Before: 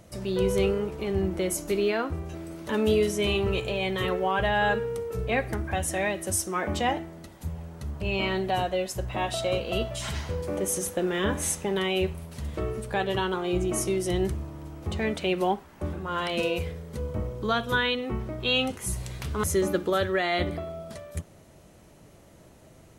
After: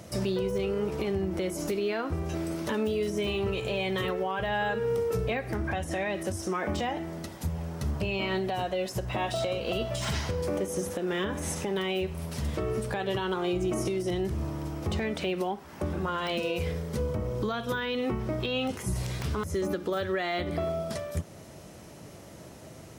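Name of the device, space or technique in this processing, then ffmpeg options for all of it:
broadcast voice chain: -filter_complex "[0:a]asettb=1/sr,asplit=3[a][b][c];[a]atrim=end=5.574[d];[b]atrim=start=5.57:end=6.55,asetpts=PTS-STARTPTS,afade=t=in:d=0.004:c=qsin,afade=t=out:st=0.976:d=0.004:c=qsin,highshelf=f=6.6k:g=-7[e];[c]atrim=start=6.546[f];[d][e]acrossfade=d=0.004:c1=hsin:c2=qsin[g];[g][f]acrossfade=d=0.004:c1=qsin:c2=hsin,highpass=73,deesser=0.95,acompressor=threshold=-28dB:ratio=4,equalizer=f=5.3k:t=o:w=0.32:g=5,alimiter=level_in=3dB:limit=-24dB:level=0:latency=1:release=250,volume=-3dB,volume=6.5dB"

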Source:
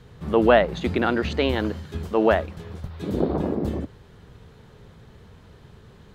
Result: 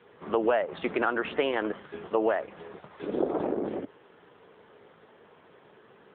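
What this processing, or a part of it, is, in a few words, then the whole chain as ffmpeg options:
voicemail: -filter_complex "[0:a]asplit=3[a][b][c];[a]afade=t=out:st=0.66:d=0.02[d];[b]adynamicequalizer=threshold=0.00708:dfrequency=1200:dqfactor=4.1:tfrequency=1200:tqfactor=4.1:attack=5:release=100:ratio=0.375:range=2.5:mode=boostabove:tftype=bell,afade=t=in:st=0.66:d=0.02,afade=t=out:st=1.88:d=0.02[e];[c]afade=t=in:st=1.88:d=0.02[f];[d][e][f]amix=inputs=3:normalize=0,highpass=400,lowpass=3k,acompressor=threshold=-23dB:ratio=6,volume=2dB" -ar 8000 -c:a libopencore_amrnb -b:a 7950

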